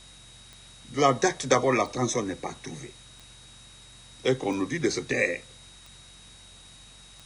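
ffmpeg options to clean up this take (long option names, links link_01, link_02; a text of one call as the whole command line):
ffmpeg -i in.wav -af "adeclick=threshold=4,bandreject=frequency=46:width_type=h:width=4,bandreject=frequency=92:width_type=h:width=4,bandreject=frequency=138:width_type=h:width=4,bandreject=frequency=184:width_type=h:width=4,bandreject=frequency=230:width_type=h:width=4,bandreject=frequency=3800:width=30,afftdn=noise_reduction=22:noise_floor=-50" out.wav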